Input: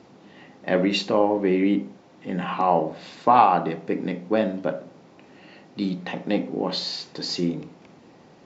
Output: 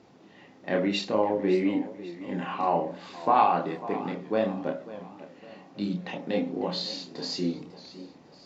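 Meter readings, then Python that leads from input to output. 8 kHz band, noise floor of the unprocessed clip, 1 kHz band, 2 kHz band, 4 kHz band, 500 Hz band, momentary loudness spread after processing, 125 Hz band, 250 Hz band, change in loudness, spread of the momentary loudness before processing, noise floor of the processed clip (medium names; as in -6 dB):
no reading, -52 dBFS, -5.0 dB, -5.0 dB, -4.5 dB, -4.0 dB, 20 LU, -5.5 dB, -4.5 dB, -5.0 dB, 13 LU, -54 dBFS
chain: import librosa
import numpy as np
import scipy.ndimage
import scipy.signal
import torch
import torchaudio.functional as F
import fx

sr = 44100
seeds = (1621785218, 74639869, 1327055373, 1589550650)

y = fx.chorus_voices(x, sr, voices=4, hz=0.57, base_ms=29, depth_ms=2.1, mix_pct=40)
y = fx.echo_warbled(y, sr, ms=550, feedback_pct=44, rate_hz=2.8, cents=140, wet_db=-15.5)
y = y * librosa.db_to_amplitude(-2.0)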